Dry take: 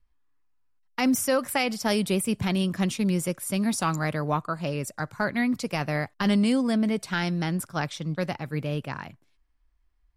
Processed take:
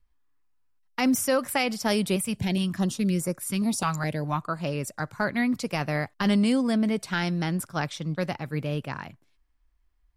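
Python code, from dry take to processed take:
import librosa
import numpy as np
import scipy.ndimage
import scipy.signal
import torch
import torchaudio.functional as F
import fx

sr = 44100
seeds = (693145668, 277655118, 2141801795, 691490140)

y = fx.filter_held_notch(x, sr, hz=4.8, low_hz=350.0, high_hz=3100.0, at=(2.16, 4.42))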